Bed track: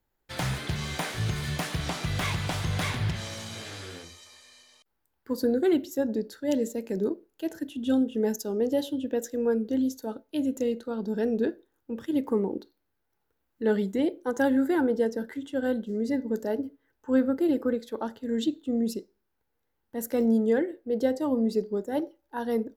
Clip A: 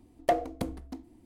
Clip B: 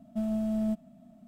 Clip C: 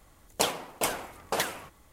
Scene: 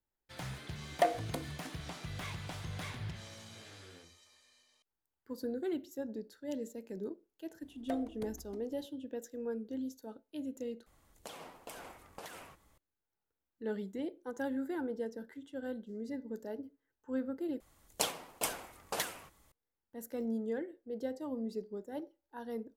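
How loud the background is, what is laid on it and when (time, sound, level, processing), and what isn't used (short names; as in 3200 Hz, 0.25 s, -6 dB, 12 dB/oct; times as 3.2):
bed track -13 dB
0.73 add A -0.5 dB + HPF 630 Hz 6 dB/oct
7.61 add A -5.5 dB + compressor 1.5:1, threshold -50 dBFS
10.86 replace with C -9 dB + compressor 8:1, threshold -34 dBFS
17.6 replace with C -9 dB + high shelf 3200 Hz +5 dB
not used: B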